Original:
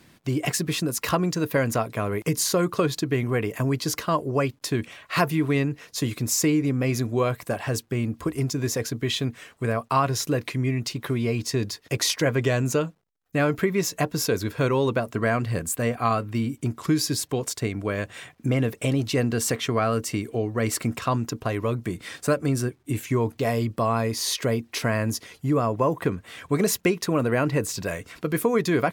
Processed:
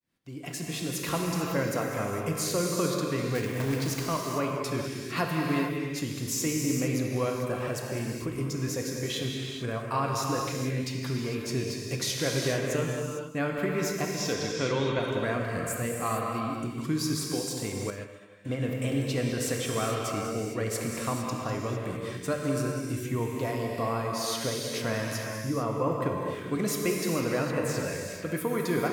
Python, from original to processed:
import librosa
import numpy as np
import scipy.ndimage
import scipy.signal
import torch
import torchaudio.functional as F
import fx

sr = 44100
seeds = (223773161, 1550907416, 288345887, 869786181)

y = fx.fade_in_head(x, sr, length_s=0.86)
y = fx.quant_companded(y, sr, bits=4, at=(3.35, 4.06))
y = fx.cabinet(y, sr, low_hz=110.0, low_slope=12, high_hz=7100.0, hz=(2000.0, 3300.0, 6000.0), db=(7, 9, 4), at=(14.13, 14.99))
y = y + 10.0 ** (-13.0 / 20.0) * np.pad(y, (int(199 * sr / 1000.0), 0))[:len(y)]
y = fx.rev_gated(y, sr, seeds[0], gate_ms=480, shape='flat', drr_db=-0.5)
y = fx.upward_expand(y, sr, threshold_db=-30.0, expansion=2.5, at=(17.9, 18.62))
y = y * 10.0 ** (-8.0 / 20.0)